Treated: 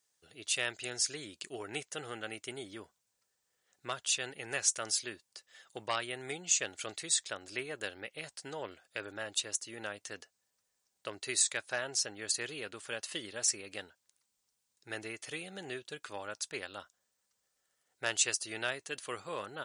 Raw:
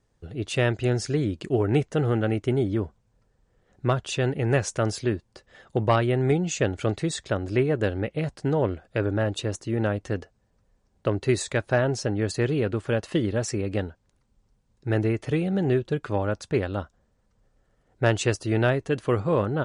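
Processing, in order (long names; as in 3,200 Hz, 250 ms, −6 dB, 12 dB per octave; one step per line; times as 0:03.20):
first difference
level +5.5 dB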